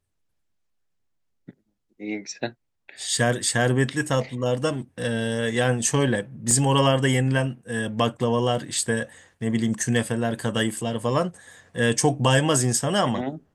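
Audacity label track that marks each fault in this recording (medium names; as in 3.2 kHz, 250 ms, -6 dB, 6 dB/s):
6.510000	6.510000	dropout 2.1 ms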